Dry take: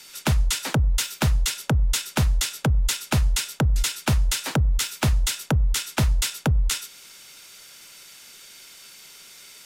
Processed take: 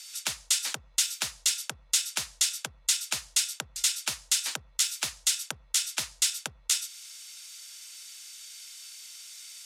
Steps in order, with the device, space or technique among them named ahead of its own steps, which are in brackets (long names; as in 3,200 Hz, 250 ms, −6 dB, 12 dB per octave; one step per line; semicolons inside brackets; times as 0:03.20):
piezo pickup straight into a mixer (low-pass filter 7,900 Hz 12 dB per octave; first difference)
level +5 dB